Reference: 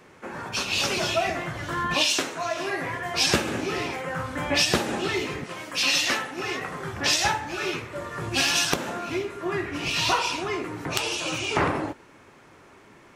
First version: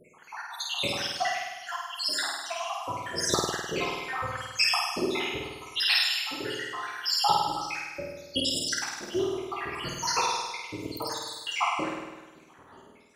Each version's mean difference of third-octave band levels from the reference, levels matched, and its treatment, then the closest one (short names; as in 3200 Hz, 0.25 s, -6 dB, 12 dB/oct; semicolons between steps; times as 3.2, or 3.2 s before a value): 9.0 dB: random spectral dropouts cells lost 85%; low shelf 310 Hz -5 dB; flutter echo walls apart 8.7 m, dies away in 1.2 s; gain +2 dB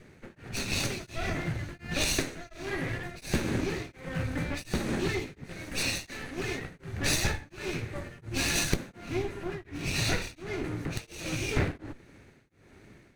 6.0 dB: minimum comb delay 0.47 ms; low shelf 220 Hz +11.5 dB; beating tremolo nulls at 1.4 Hz; gain -4 dB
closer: second